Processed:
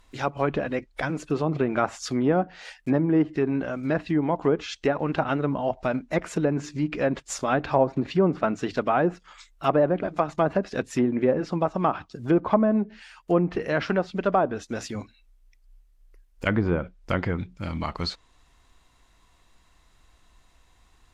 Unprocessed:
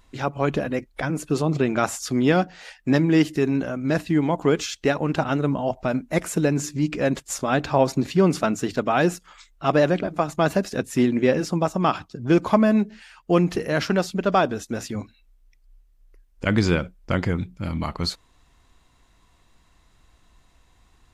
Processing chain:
one scale factor per block 7 bits
treble cut that deepens with the level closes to 1,000 Hz, closed at −15 dBFS
parametric band 150 Hz −4.5 dB 2.7 octaves

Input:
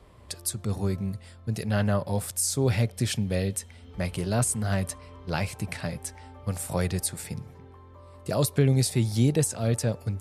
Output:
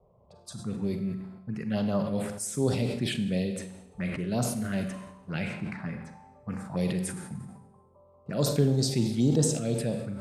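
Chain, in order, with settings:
low shelf with overshoot 120 Hz −10.5 dB, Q 1.5
low-pass that shuts in the quiet parts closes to 640 Hz, open at −21.5 dBFS
phaser swept by the level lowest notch 280 Hz, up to 2,300 Hz, full sweep at −20 dBFS
convolution reverb RT60 1.0 s, pre-delay 33 ms, DRR 7 dB
level that may fall only so fast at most 60 dB per second
level −2 dB

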